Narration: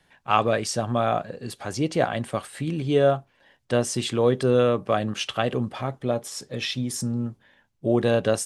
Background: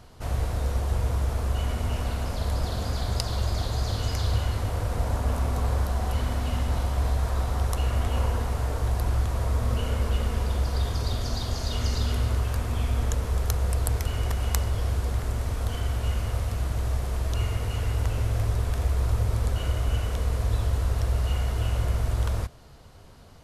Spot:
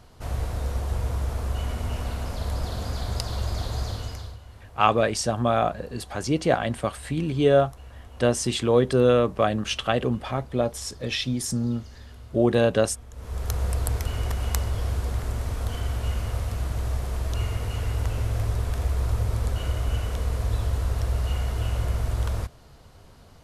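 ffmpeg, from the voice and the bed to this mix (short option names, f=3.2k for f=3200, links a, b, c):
-filter_complex "[0:a]adelay=4500,volume=1dB[a];[1:a]volume=17dB,afade=t=out:st=3.8:d=0.57:silence=0.133352,afade=t=in:st=13.12:d=0.47:silence=0.11885[b];[a][b]amix=inputs=2:normalize=0"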